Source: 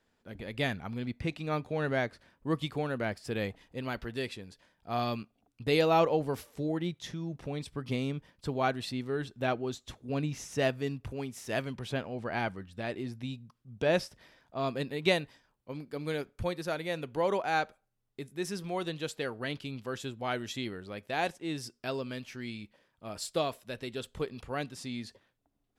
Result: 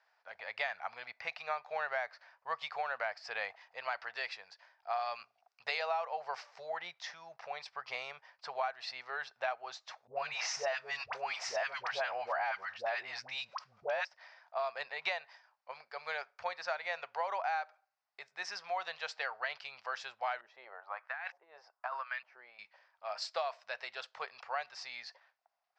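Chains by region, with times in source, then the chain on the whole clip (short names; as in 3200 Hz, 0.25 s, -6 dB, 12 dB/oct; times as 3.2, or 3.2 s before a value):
5.15–5.8 high shelf 6900 Hz +10 dB + notches 60/120/180/240/300/360/420/480 Hz
10.07–14.05 dispersion highs, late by 86 ms, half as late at 690 Hz + fast leveller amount 50%
20.41–22.59 bell 1100 Hz +6 dB 1.5 oct + LFO band-pass saw up 1.1 Hz 280–2400 Hz + negative-ratio compressor -42 dBFS
whole clip: elliptic band-pass 710–5100 Hz, stop band 40 dB; bell 3400 Hz -10 dB 0.7 oct; compressor 12:1, threshold -38 dBFS; gain +6.5 dB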